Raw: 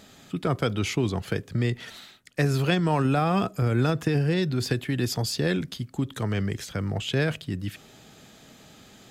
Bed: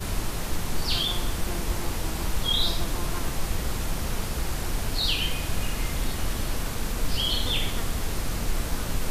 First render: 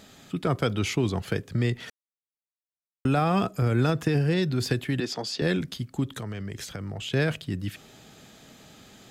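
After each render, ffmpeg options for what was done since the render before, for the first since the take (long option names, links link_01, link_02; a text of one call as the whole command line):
ffmpeg -i in.wav -filter_complex "[0:a]asettb=1/sr,asplit=3[link_01][link_02][link_03];[link_01]atrim=end=5.004[link_04];[link_02]atrim=start=5:end=5.42,asetpts=PTS-STARTPTS,afade=type=in:duration=0.004:curve=qsin,afade=type=out:start_time=0.416:duration=0.004:curve=qsin,acrossover=split=210 6700:gain=0.0708 1 0.112[link_05][link_06][link_07];[link_05][link_06][link_07]amix=inputs=3:normalize=0[link_08];[link_03]atrim=start=5.416[link_09];[link_04][link_08]acrossfade=duration=0.004:curve1=hsin:curve2=qsin[link_10];[link_10][link_09]acrossfade=duration=0.004:curve1=qsin:curve2=hsin,asettb=1/sr,asplit=3[link_11][link_12][link_13];[link_11]atrim=end=6.154[link_14];[link_12]atrim=start=6.15:end=7.14,asetpts=PTS-STARTPTS,afade=type=in:duration=0.004:curve=qsin,afade=type=out:start_time=0.986:duration=0.004:curve=qsin,acompressor=threshold=-30dB:ratio=12:attack=3.2:release=140:knee=1:detection=peak[link_15];[link_13]atrim=start=7.136[link_16];[link_14][link_15]acrossfade=duration=0.004:curve1=hsin:curve2=qsin[link_17];[link_17][link_16]acrossfade=duration=0.004:curve1=qsin:curve2=hsin,asplit=3[link_18][link_19][link_20];[link_18]atrim=end=1.9,asetpts=PTS-STARTPTS,afade=type=out:start_time=1.896:duration=0.004:curve=hsin[link_21];[link_19]atrim=start=1.9:end=3.05,asetpts=PTS-STARTPTS,volume=0[link_22];[link_20]atrim=start=3.05,asetpts=PTS-STARTPTS,afade=type=in:duration=0.004:curve=hsin[link_23];[link_21][link_22][link_23]concat=n=3:v=0:a=1" out.wav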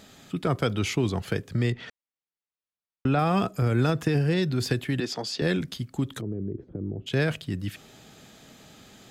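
ffmpeg -i in.wav -filter_complex "[0:a]asettb=1/sr,asplit=3[link_01][link_02][link_03];[link_01]atrim=end=1.724[link_04];[link_02]atrim=start=1.72:end=3.19,asetpts=PTS-STARTPTS,afade=type=in:duration=0.004:curve=qsin,afade=type=out:start_time=1.466:duration=0.004:curve=qsin,lowpass=4200[link_05];[link_03]atrim=start=3.186[link_06];[link_04][link_05]acrossfade=duration=0.004:curve1=hsin:curve2=qsin[link_07];[link_07][link_06]acrossfade=duration=0.004:curve1=qsin:curve2=hsin,asplit=3[link_08][link_09][link_10];[link_08]afade=type=out:start_time=6.2:duration=0.02[link_11];[link_09]lowpass=frequency=350:width_type=q:width=3.4,afade=type=in:start_time=6.2:duration=0.02,afade=type=out:start_time=7.06:duration=0.02[link_12];[link_10]afade=type=in:start_time=7.06:duration=0.02[link_13];[link_11][link_12][link_13]amix=inputs=3:normalize=0" out.wav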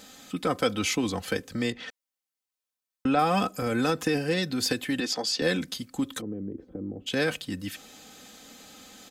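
ffmpeg -i in.wav -af "bass=frequency=250:gain=-6,treble=frequency=4000:gain=5,aecho=1:1:3.9:0.63" out.wav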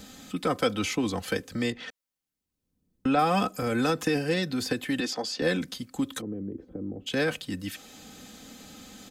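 ffmpeg -i in.wav -filter_complex "[0:a]acrossover=split=280|590|2100[link_01][link_02][link_03][link_04];[link_01]acompressor=mode=upward:threshold=-42dB:ratio=2.5[link_05];[link_04]alimiter=limit=-24dB:level=0:latency=1:release=267[link_06];[link_05][link_02][link_03][link_06]amix=inputs=4:normalize=0" out.wav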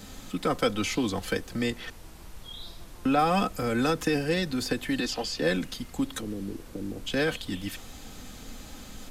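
ffmpeg -i in.wav -i bed.wav -filter_complex "[1:a]volume=-18dB[link_01];[0:a][link_01]amix=inputs=2:normalize=0" out.wav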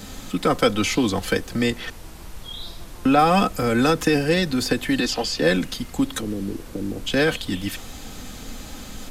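ffmpeg -i in.wav -af "volume=7dB" out.wav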